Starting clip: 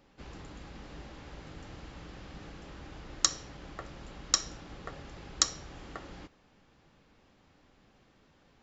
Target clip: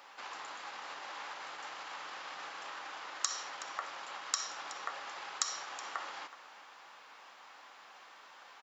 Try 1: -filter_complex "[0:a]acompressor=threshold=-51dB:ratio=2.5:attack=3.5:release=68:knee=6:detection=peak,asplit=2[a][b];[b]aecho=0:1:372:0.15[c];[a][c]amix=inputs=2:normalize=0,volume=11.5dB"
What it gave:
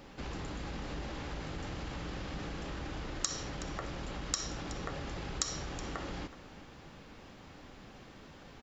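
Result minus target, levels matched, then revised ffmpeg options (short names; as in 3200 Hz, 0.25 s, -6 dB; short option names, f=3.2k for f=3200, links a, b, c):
1000 Hz band -4.5 dB
-filter_complex "[0:a]acompressor=threshold=-51dB:ratio=2.5:attack=3.5:release=68:knee=6:detection=peak,highpass=f=980:t=q:w=1.7,asplit=2[a][b];[b]aecho=0:1:372:0.15[c];[a][c]amix=inputs=2:normalize=0,volume=11.5dB"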